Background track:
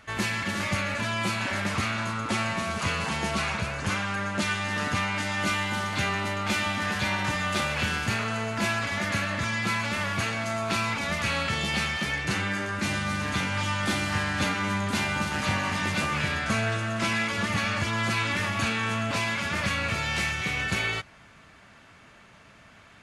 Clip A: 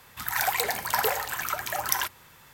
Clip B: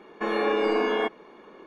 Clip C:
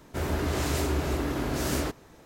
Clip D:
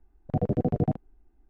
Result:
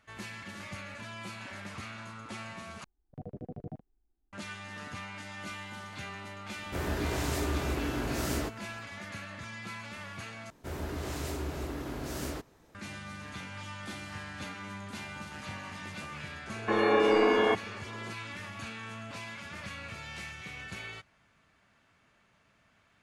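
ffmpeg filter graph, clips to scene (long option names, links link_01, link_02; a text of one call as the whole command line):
ffmpeg -i bed.wav -i cue0.wav -i cue1.wav -i cue2.wav -i cue3.wav -filter_complex "[3:a]asplit=2[link_01][link_02];[0:a]volume=-14.5dB[link_03];[link_01]asplit=2[link_04][link_05];[link_05]adelay=17,volume=-11dB[link_06];[link_04][link_06]amix=inputs=2:normalize=0[link_07];[link_03]asplit=3[link_08][link_09][link_10];[link_08]atrim=end=2.844[link_11];[4:a]atrim=end=1.49,asetpts=PTS-STARTPTS,volume=-17dB[link_12];[link_09]atrim=start=4.326:end=10.504[link_13];[link_02]atrim=end=2.25,asetpts=PTS-STARTPTS,volume=-8.5dB[link_14];[link_10]atrim=start=12.746[link_15];[link_07]atrim=end=2.25,asetpts=PTS-STARTPTS,volume=-4.5dB,afade=type=in:duration=0.004:curve=hsin,afade=type=out:start_time=2.246:duration=0.004:curve=hsin,adelay=290178S[link_16];[2:a]atrim=end=1.66,asetpts=PTS-STARTPTS,afade=type=in:duration=0.004:curve=hsin,afade=type=out:start_time=1.656:duration=0.004:curve=hsin,adelay=16470[link_17];[link_11][link_12]acrossfade=duration=0.004:curve1=hsin:curve2=hsin[link_18];[link_18][link_13]acrossfade=duration=0.004:curve1=hsin:curve2=hsin[link_19];[link_19][link_14]acrossfade=duration=0.004:curve1=hsin:curve2=hsin[link_20];[link_20][link_15]acrossfade=duration=0.004:curve1=hsin:curve2=hsin[link_21];[link_21][link_16][link_17]amix=inputs=3:normalize=0" out.wav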